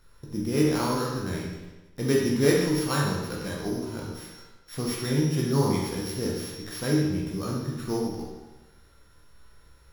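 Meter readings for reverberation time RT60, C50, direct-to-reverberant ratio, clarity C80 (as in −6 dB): 1.1 s, 1.0 dB, −4.0 dB, 3.5 dB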